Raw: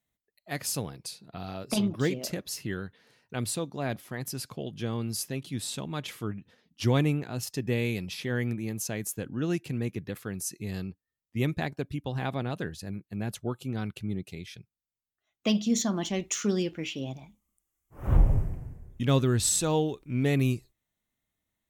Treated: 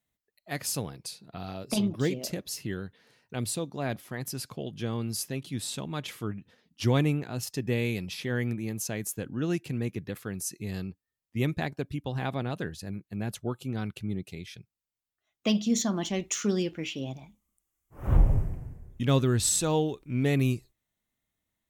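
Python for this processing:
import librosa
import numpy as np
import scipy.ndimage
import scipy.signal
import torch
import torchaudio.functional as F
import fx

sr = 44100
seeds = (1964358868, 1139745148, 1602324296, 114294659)

y = fx.dynamic_eq(x, sr, hz=1400.0, q=1.1, threshold_db=-50.0, ratio=4.0, max_db=-4, at=(1.51, 3.69))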